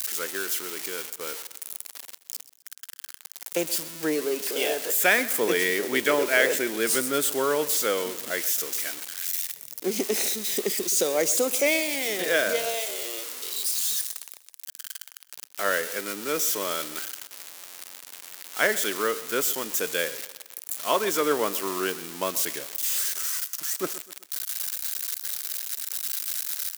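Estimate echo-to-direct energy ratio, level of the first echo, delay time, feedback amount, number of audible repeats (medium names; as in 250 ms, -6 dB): -16.0 dB, -17.0 dB, 128 ms, 43%, 3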